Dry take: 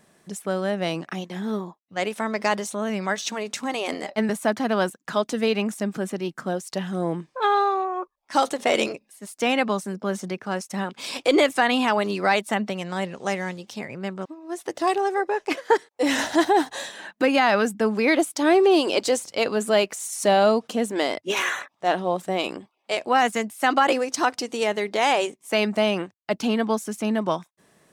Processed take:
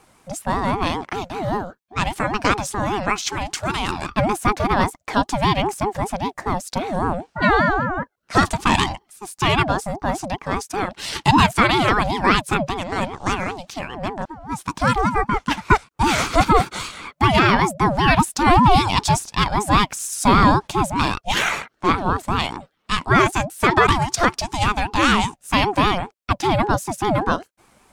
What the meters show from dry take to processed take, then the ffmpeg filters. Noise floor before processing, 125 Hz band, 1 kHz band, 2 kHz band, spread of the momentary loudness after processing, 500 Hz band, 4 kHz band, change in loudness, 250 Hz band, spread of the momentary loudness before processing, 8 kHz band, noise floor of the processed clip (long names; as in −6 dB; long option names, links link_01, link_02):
−71 dBFS, +13.5 dB, +6.5 dB, +5.0 dB, 11 LU, −2.0 dB, +4.5 dB, +4.0 dB, +3.0 dB, 11 LU, +4.0 dB, −67 dBFS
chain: -af "aeval=exprs='val(0)*sin(2*PI*490*n/s+490*0.3/5.1*sin(2*PI*5.1*n/s))':channel_layout=same,volume=7dB"